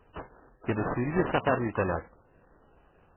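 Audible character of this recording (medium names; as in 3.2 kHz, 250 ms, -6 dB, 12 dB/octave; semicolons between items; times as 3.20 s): aliases and images of a low sample rate 2.2 kHz, jitter 20%; MP3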